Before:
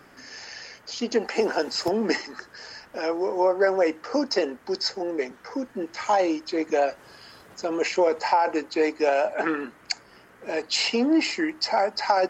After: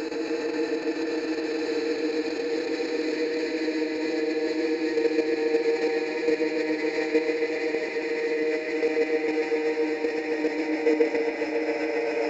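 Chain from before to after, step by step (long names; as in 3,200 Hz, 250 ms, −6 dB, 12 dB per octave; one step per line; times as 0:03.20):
low-shelf EQ 100 Hz +6 dB
mains-hum notches 50/100/150/200/250/300/350 Hz
extreme stretch with random phases 37×, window 0.50 s, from 0:08.62
output level in coarse steps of 10 dB
bucket-brigade delay 138 ms, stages 4,096, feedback 84%, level −5 dB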